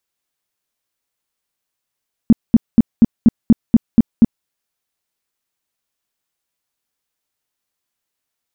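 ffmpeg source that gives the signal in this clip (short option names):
-f lavfi -i "aevalsrc='0.708*sin(2*PI*229*mod(t,0.24))*lt(mod(t,0.24),6/229)':d=2.16:s=44100"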